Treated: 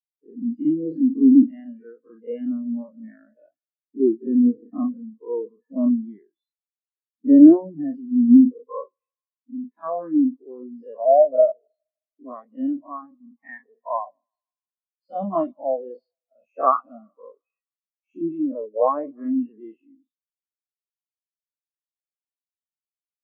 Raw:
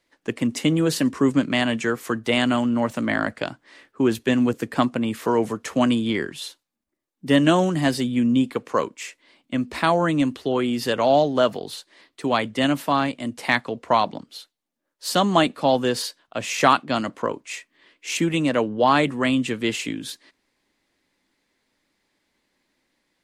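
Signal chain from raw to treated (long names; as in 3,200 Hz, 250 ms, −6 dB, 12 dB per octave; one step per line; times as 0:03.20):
every bin's largest magnitude spread in time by 120 ms
mains-hum notches 60/120/180 Hz
on a send: feedback echo with a high-pass in the loop 155 ms, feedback 83%, high-pass 380 Hz, level −13 dB
on the sum: every bin expanded away from the loudest bin 4 to 1
level −4 dB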